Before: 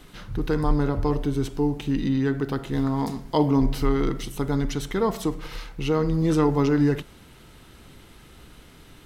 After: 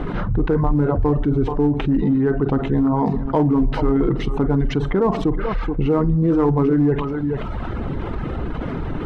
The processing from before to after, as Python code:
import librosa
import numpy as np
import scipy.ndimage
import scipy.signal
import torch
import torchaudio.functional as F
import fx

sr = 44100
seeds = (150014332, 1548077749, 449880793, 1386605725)

p1 = scipy.signal.sosfilt(scipy.signal.butter(2, 1100.0, 'lowpass', fs=sr, output='sos'), x)
p2 = fx.echo_multitap(p1, sr, ms=(48, 428), db=(-11.5, -16.0))
p3 = fx.dereverb_blind(p2, sr, rt60_s=0.84)
p4 = np.clip(p3, -10.0 ** (-19.0 / 20.0), 10.0 ** (-19.0 / 20.0))
p5 = p3 + F.gain(torch.from_numpy(p4), -7.0).numpy()
y = fx.env_flatten(p5, sr, amount_pct=70)